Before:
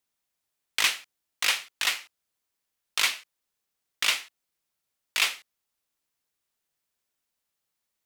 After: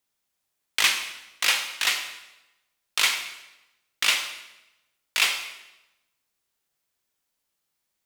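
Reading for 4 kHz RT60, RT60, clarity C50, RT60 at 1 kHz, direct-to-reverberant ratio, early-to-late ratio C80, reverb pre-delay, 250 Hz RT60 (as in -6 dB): 0.85 s, 1.0 s, 7.5 dB, 0.95 s, 5.0 dB, 9.5 dB, 15 ms, 1.0 s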